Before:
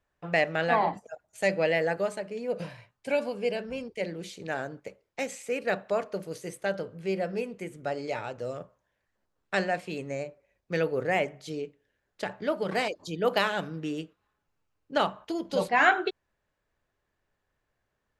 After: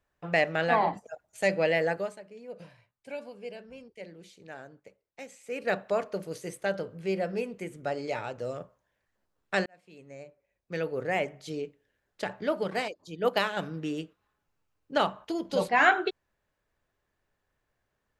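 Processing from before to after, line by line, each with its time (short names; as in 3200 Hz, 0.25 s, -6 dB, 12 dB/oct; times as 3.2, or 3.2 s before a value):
1.89–5.7 dip -11.5 dB, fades 0.29 s
9.66–11.6 fade in
12.68–13.57 upward expander, over -43 dBFS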